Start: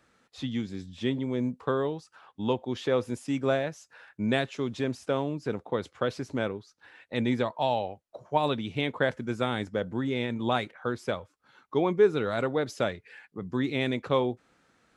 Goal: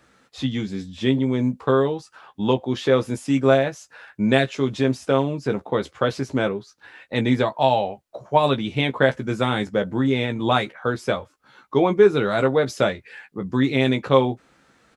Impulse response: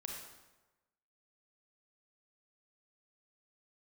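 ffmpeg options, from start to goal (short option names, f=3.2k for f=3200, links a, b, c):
-filter_complex "[0:a]asplit=2[a][b];[b]adelay=15,volume=-6.5dB[c];[a][c]amix=inputs=2:normalize=0,volume=7dB"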